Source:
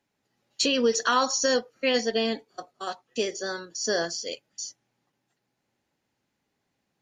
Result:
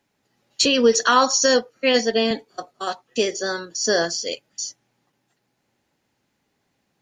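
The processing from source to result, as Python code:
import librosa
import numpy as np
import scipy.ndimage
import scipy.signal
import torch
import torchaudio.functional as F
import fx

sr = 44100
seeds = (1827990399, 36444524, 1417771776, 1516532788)

y = fx.band_widen(x, sr, depth_pct=40, at=(0.65, 2.31))
y = y * librosa.db_to_amplitude(6.5)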